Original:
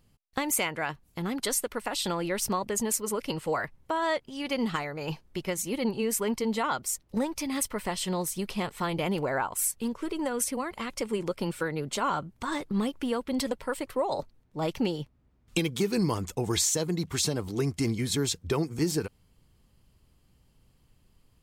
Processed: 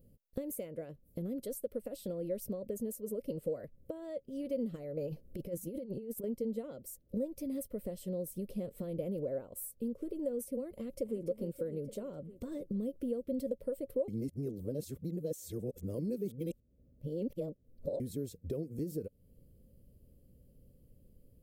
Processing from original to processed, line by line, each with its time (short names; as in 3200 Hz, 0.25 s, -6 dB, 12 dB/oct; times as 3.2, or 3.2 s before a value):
4.97–6.24 negative-ratio compressor -34 dBFS, ratio -0.5
10.76–11.22 echo throw 0.29 s, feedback 60%, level -9 dB
14.08–18 reverse
whole clip: compressor 3:1, threshold -42 dBFS; EQ curve 140 Hz 0 dB, 240 Hz +3 dB, 370 Hz -1 dB, 550 Hz +8 dB, 840 Hz -24 dB, 7000 Hz -15 dB, 14000 Hz +2 dB; gain +2 dB